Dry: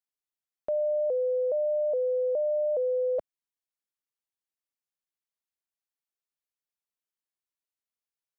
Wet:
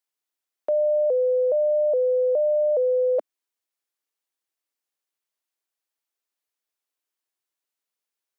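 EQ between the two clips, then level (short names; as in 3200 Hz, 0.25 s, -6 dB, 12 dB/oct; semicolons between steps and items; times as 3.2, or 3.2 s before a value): steep high-pass 260 Hz; +6.0 dB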